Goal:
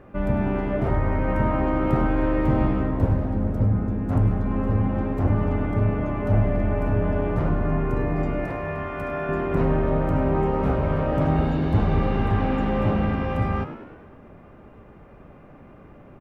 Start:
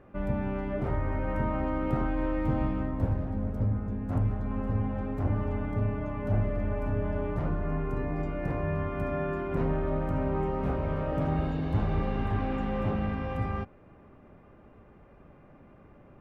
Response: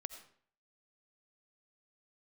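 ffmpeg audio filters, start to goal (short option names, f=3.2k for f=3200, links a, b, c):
-filter_complex "[0:a]asettb=1/sr,asplit=3[a][b][c];[a]atrim=end=8.454[d];[b]atrim=start=8.45:end=9.29,asetpts=PTS-STARTPTS,afade=t=in:d=0.004:c=qsin,afade=t=out:st=0.836:d=0.004:c=qsin,lowshelf=f=450:g=-10[e];[c]atrim=start=9.286[f];[d][e]acrossfade=d=0.004:c1=hsin:c2=qsin[g];[g][f]acrossfade=d=0.004:c1=qsin:c2=hsin,asplit=7[h][i][j][k][l][m][n];[i]adelay=101,afreqshift=74,volume=-12.5dB[o];[j]adelay=202,afreqshift=148,volume=-17.7dB[p];[k]adelay=303,afreqshift=222,volume=-22.9dB[q];[l]adelay=404,afreqshift=296,volume=-28.1dB[r];[m]adelay=505,afreqshift=370,volume=-33.3dB[s];[n]adelay=606,afreqshift=444,volume=-38.5dB[t];[h][o][p][q][r][s][t]amix=inputs=7:normalize=0,volume=7dB"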